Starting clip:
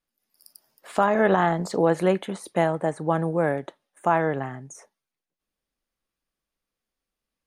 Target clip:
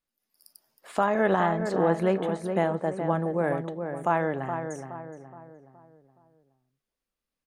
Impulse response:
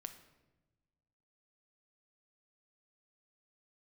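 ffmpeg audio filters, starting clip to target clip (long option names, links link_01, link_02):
-filter_complex "[0:a]asettb=1/sr,asplit=3[link_01][link_02][link_03];[link_01]atrim=end=1.474[link_04];[link_02]atrim=start=1.47:end=3.44,asetpts=PTS-STARTPTS,afade=type=in:duration=0.004:curve=qsin,afade=type=out:start_time=1.966:duration=0.004:curve=qsin,highshelf=frequency=4500:gain=-6.5[link_05];[link_03]atrim=start=3.436[link_06];[link_04][link_05]acrossfade=duration=0.004:curve1=hsin:curve2=qsin[link_07];[link_07][link_06]acrossfade=duration=0.004:curve1=qsin:curve2=hsin,asplit=2[link_08][link_09];[link_09]adelay=420,lowpass=frequency=1600:poles=1,volume=-6.5dB,asplit=2[link_10][link_11];[link_11]adelay=420,lowpass=frequency=1600:poles=1,volume=0.45,asplit=2[link_12][link_13];[link_13]adelay=420,lowpass=frequency=1600:poles=1,volume=0.45,asplit=2[link_14][link_15];[link_15]adelay=420,lowpass=frequency=1600:poles=1,volume=0.45,asplit=2[link_16][link_17];[link_17]adelay=420,lowpass=frequency=1600:poles=1,volume=0.45[link_18];[link_10][link_12][link_14][link_16][link_18]amix=inputs=5:normalize=0[link_19];[link_08][link_19]amix=inputs=2:normalize=0,volume=-3.5dB"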